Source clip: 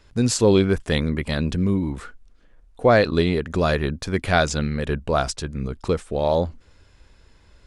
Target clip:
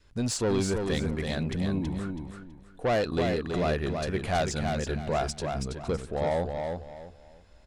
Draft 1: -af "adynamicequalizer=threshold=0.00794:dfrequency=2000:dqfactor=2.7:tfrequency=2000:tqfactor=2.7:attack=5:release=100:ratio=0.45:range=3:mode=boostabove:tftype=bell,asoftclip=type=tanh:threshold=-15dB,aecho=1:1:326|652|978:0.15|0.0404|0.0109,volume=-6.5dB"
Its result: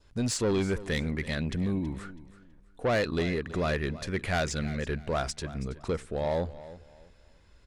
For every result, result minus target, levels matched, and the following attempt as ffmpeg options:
echo-to-direct -11.5 dB; 2000 Hz band +3.0 dB
-af "adynamicequalizer=threshold=0.00794:dfrequency=2000:dqfactor=2.7:tfrequency=2000:tqfactor=2.7:attack=5:release=100:ratio=0.45:range=3:mode=boostabove:tftype=bell,asoftclip=type=tanh:threshold=-15dB,aecho=1:1:326|652|978|1304:0.562|0.152|0.041|0.0111,volume=-6.5dB"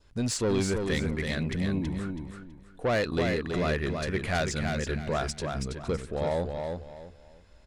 2000 Hz band +3.5 dB
-af "adynamicequalizer=threshold=0.00794:dfrequency=740:dqfactor=2.7:tfrequency=740:tqfactor=2.7:attack=5:release=100:ratio=0.45:range=3:mode=boostabove:tftype=bell,asoftclip=type=tanh:threshold=-15dB,aecho=1:1:326|652|978|1304:0.562|0.152|0.041|0.0111,volume=-6.5dB"

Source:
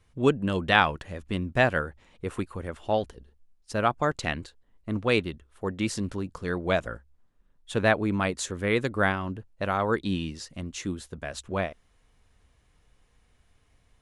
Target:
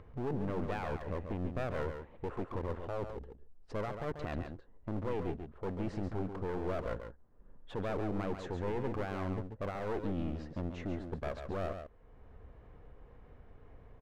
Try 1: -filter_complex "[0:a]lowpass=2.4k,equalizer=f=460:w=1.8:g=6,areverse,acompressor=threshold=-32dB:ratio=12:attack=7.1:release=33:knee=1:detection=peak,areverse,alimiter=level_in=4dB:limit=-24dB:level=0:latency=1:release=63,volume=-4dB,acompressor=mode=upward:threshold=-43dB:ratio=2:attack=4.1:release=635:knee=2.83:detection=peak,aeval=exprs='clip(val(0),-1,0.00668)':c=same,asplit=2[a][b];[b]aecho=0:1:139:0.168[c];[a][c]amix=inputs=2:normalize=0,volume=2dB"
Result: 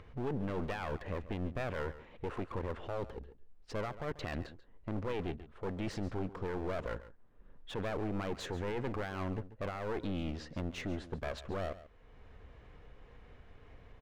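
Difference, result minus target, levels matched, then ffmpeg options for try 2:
echo-to-direct -8 dB; 2000 Hz band +3.0 dB
-filter_complex "[0:a]lowpass=1.2k,equalizer=f=460:w=1.8:g=6,areverse,acompressor=threshold=-32dB:ratio=12:attack=7.1:release=33:knee=1:detection=peak,areverse,alimiter=level_in=4dB:limit=-24dB:level=0:latency=1:release=63,volume=-4dB,acompressor=mode=upward:threshold=-43dB:ratio=2:attack=4.1:release=635:knee=2.83:detection=peak,aeval=exprs='clip(val(0),-1,0.00668)':c=same,asplit=2[a][b];[b]aecho=0:1:139:0.422[c];[a][c]amix=inputs=2:normalize=0,volume=2dB"

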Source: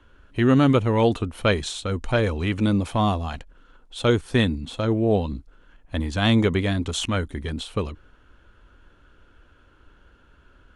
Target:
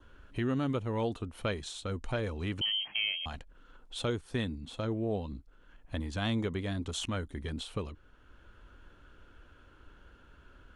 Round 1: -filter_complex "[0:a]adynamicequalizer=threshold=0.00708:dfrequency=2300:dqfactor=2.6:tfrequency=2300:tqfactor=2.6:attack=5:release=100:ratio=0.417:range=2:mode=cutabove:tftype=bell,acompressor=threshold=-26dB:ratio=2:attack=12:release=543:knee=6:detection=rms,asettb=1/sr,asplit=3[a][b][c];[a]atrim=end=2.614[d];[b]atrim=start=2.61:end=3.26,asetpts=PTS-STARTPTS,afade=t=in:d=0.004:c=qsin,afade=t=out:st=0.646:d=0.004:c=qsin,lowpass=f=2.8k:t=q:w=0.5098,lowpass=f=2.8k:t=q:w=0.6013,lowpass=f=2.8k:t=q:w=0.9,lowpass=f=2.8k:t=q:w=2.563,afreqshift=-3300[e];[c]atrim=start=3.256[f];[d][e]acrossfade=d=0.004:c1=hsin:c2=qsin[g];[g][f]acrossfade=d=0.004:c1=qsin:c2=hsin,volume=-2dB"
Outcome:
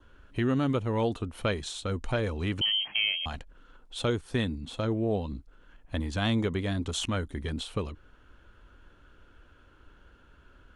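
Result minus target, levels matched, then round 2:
compressor: peak gain reduction -4.5 dB
-filter_complex "[0:a]adynamicequalizer=threshold=0.00708:dfrequency=2300:dqfactor=2.6:tfrequency=2300:tqfactor=2.6:attack=5:release=100:ratio=0.417:range=2:mode=cutabove:tftype=bell,acompressor=threshold=-35dB:ratio=2:attack=12:release=543:knee=6:detection=rms,asettb=1/sr,asplit=3[a][b][c];[a]atrim=end=2.614[d];[b]atrim=start=2.61:end=3.26,asetpts=PTS-STARTPTS,afade=t=in:d=0.004:c=qsin,afade=t=out:st=0.646:d=0.004:c=qsin,lowpass=f=2.8k:t=q:w=0.5098,lowpass=f=2.8k:t=q:w=0.6013,lowpass=f=2.8k:t=q:w=0.9,lowpass=f=2.8k:t=q:w=2.563,afreqshift=-3300[e];[c]atrim=start=3.256[f];[d][e]acrossfade=d=0.004:c1=hsin:c2=qsin[g];[g][f]acrossfade=d=0.004:c1=qsin:c2=hsin,volume=-2dB"

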